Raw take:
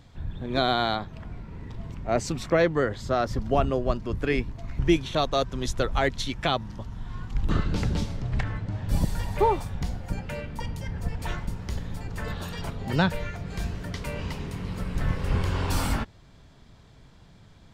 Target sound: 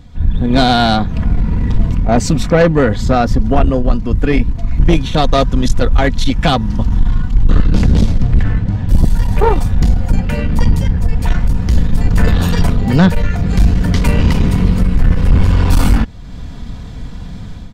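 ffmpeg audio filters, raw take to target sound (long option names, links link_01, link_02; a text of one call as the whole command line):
ffmpeg -i in.wav -af "bass=frequency=250:gain=10,treble=frequency=4000:gain=0,aecho=1:1:4.1:0.44,dynaudnorm=framelen=100:gausssize=5:maxgain=11.5dB,aeval=exprs='(tanh(3.16*val(0)+0.3)-tanh(0.3))/3.16':channel_layout=same,volume=6.5dB" out.wav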